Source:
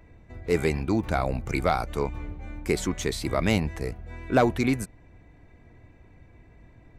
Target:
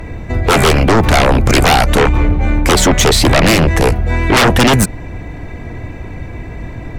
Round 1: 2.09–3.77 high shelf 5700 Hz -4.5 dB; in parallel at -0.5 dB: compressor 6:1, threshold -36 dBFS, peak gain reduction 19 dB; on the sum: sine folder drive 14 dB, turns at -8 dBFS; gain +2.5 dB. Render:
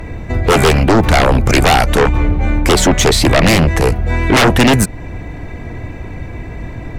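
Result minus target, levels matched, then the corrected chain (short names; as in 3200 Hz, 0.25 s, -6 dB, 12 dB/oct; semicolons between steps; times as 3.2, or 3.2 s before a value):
compressor: peak gain reduction +8 dB
2.09–3.77 high shelf 5700 Hz -4.5 dB; in parallel at -0.5 dB: compressor 6:1, threshold -26.5 dBFS, peak gain reduction 11 dB; on the sum: sine folder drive 14 dB, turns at -8 dBFS; gain +2.5 dB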